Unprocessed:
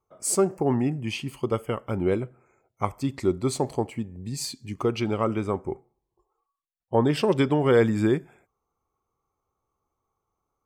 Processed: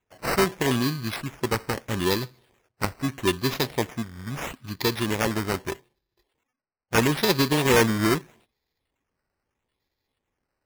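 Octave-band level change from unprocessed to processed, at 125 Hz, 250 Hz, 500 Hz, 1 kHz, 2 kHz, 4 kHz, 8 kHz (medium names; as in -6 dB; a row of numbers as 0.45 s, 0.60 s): 0.0 dB, -0.5 dB, -2.0 dB, +2.5 dB, +8.5 dB, +8.5 dB, +0.5 dB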